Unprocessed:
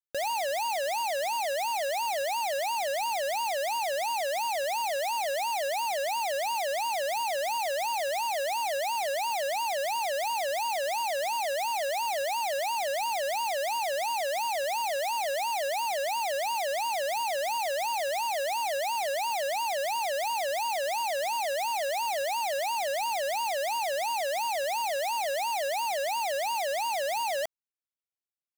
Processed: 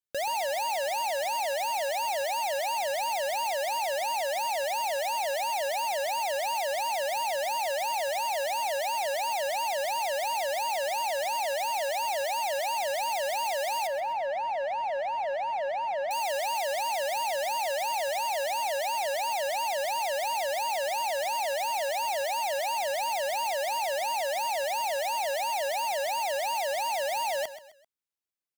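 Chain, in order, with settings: 13.87–16.11 LPF 1800 Hz 12 dB/oct; feedback echo 0.13 s, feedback 36%, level -13.5 dB

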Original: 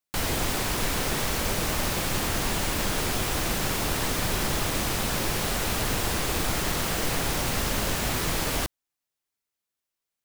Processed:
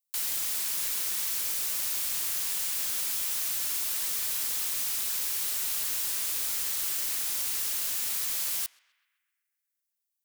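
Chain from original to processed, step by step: pre-emphasis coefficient 0.97; notch 730 Hz, Q 12; narrowing echo 0.13 s, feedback 63%, band-pass 1800 Hz, level -21 dB

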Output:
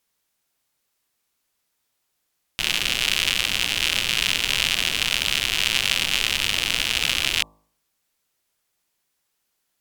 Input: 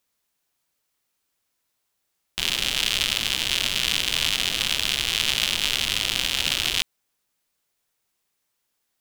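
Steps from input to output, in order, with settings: speed mistake 48 kHz file played as 44.1 kHz; de-hum 52.3 Hz, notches 23; gain +1.5 dB

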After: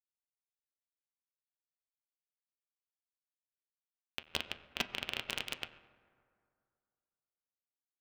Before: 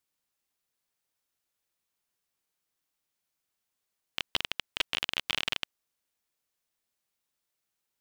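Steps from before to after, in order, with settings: cycle switcher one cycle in 2, muted; bell 2600 Hz +4 dB 0.21 oct; small resonant body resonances 220/440 Hz, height 12 dB, ringing for 45 ms; sample gate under -26.5 dBFS; reverb RT60 2.4 s, pre-delay 6 ms, DRR 3.5 dB; upward expander 1.5:1, over -52 dBFS; gain -4.5 dB

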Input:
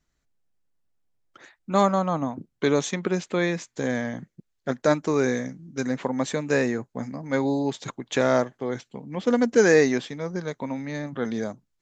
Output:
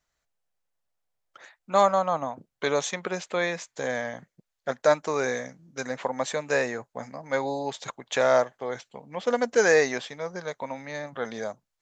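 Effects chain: resonant low shelf 430 Hz -9 dB, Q 1.5

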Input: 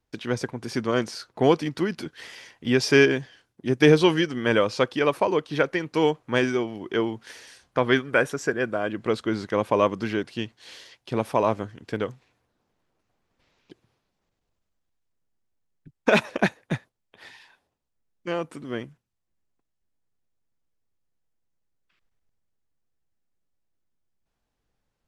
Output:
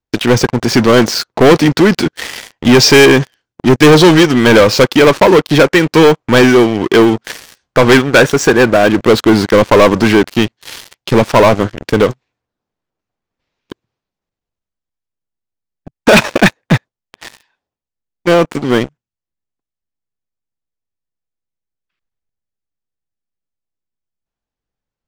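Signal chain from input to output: steep low-pass 8000 Hz; sample leveller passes 5; gain +3 dB

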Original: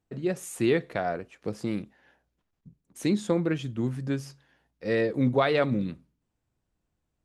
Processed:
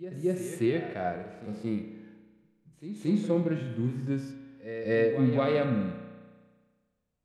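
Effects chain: pre-echo 0.226 s -12.5 dB; spring tank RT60 1.5 s, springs 33 ms, chirp 35 ms, DRR 9 dB; harmonic-percussive split percussive -18 dB

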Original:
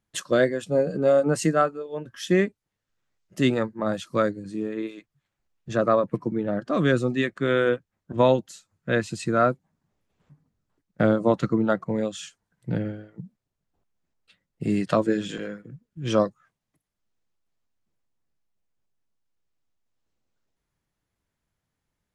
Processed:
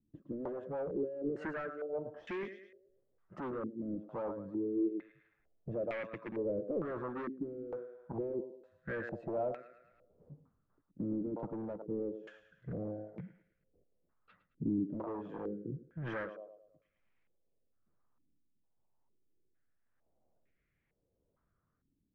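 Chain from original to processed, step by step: dynamic EQ 410 Hz, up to +8 dB, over -34 dBFS, Q 1; compressor 2.5:1, threshold -40 dBFS, peak gain reduction 20 dB; on a send: thinning echo 0.108 s, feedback 56%, high-pass 440 Hz, level -12 dB; on the sum: hard clip -37.5 dBFS, distortion -5 dB; rotary speaker horn 6 Hz, later 1 Hz, at 0.81; stepped low-pass 2.2 Hz 280–2200 Hz; gain +1 dB

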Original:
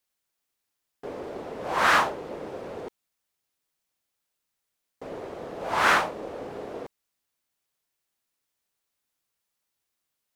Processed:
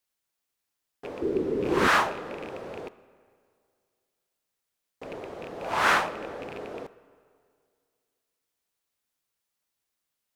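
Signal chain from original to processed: rattling part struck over -41 dBFS, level -28 dBFS; 1.22–1.88 resonant low shelf 510 Hz +9.5 dB, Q 3; reverb RT60 2.2 s, pre-delay 5 ms, DRR 17 dB; gain -1.5 dB

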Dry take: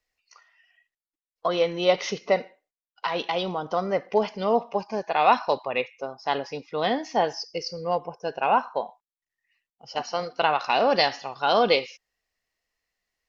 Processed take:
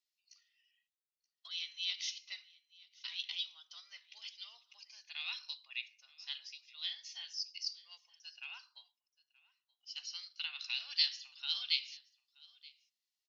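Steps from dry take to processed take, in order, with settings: ladder high-pass 2900 Hz, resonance 40%; on a send: echo 0.927 s -23.5 dB

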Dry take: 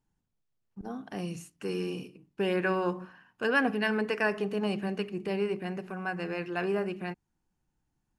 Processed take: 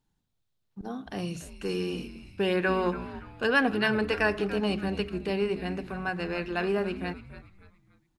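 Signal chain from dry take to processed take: bell 3800 Hz +8 dB 0.5 oct; on a send: frequency-shifting echo 0.286 s, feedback 37%, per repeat -130 Hz, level -13.5 dB; on the sum: gain +2 dB

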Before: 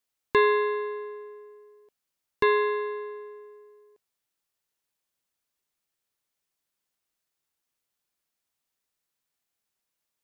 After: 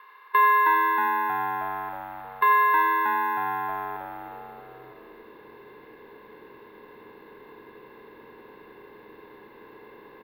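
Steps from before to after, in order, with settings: per-bin compression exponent 0.4; high-pass sweep 1100 Hz -> 490 Hz, 3.6–4.4; careless resampling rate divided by 3×, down filtered, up zero stuff; air absorption 400 m; frequency-shifting echo 0.316 s, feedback 51%, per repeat -96 Hz, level -5.5 dB; on a send at -7.5 dB: reverb, pre-delay 6 ms

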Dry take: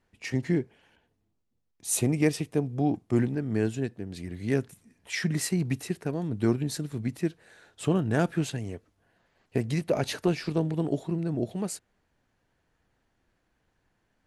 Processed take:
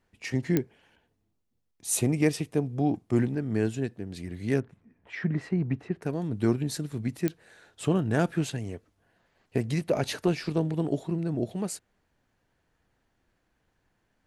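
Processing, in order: 4.6–6.02 LPF 1700 Hz 12 dB/oct; pops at 0.57/7.28, -11 dBFS

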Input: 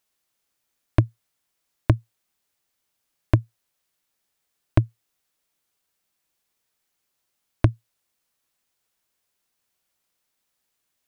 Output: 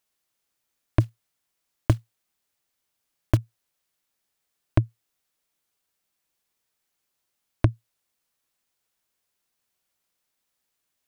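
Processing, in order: 1–3.38 block floating point 5-bit; gain -2 dB

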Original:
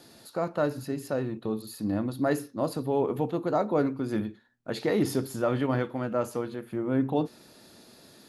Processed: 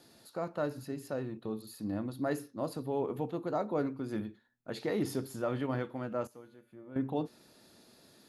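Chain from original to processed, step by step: 6.27–6.96 resonator 290 Hz, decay 0.96 s, mix 80%; gain -7 dB

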